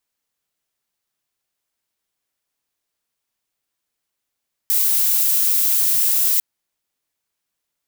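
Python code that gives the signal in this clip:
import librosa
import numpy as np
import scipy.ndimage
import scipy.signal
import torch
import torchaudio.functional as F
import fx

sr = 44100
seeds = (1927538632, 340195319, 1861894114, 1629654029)

y = fx.noise_colour(sr, seeds[0], length_s=1.7, colour='violet', level_db=-17.0)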